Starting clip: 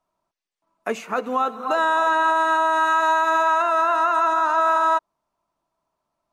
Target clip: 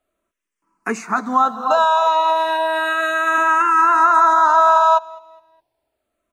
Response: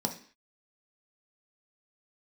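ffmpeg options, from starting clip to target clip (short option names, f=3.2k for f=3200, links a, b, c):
-filter_complex "[0:a]asettb=1/sr,asplit=3[a][b][c];[a]atrim=end=1.844[d];[b]atrim=start=1.84:end=3.38,asetpts=PTS-STARTPTS,afade=t=in:d=0.004:c=qsin,afade=t=out:st=1.536:d=0.004:c=qsin,highpass=f=510:p=1[e];[c]atrim=start=3.376[f];[d][e]acrossfade=d=0.004:c1=hsin:c2=qsin[g];[g][f]acrossfade=d=0.004:c1=qsin:c2=hsin,asplit=2[h][i];[i]aecho=0:1:206|412|618:0.0794|0.031|0.0121[j];[h][j]amix=inputs=2:normalize=0,asplit=2[k][l];[l]afreqshift=-0.33[m];[k][m]amix=inputs=2:normalize=1,volume=7.5dB"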